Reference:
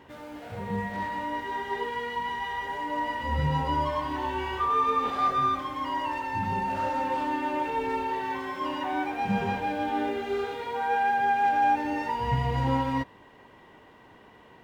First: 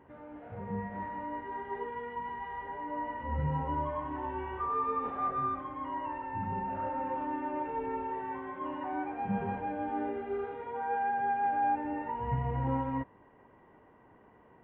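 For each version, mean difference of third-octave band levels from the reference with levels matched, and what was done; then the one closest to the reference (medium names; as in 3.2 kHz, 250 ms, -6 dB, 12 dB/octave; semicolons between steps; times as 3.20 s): 6.0 dB: Gaussian low-pass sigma 4.4 samples; trim -5 dB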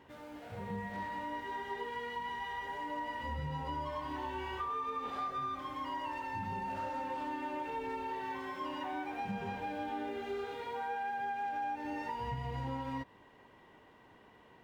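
2.0 dB: compression, threshold -28 dBFS, peak gain reduction 8 dB; trim -7 dB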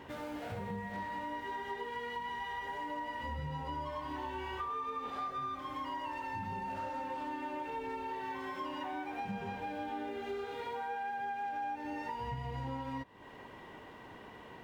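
3.5 dB: compression, threshold -40 dBFS, peak gain reduction 18 dB; trim +2 dB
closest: second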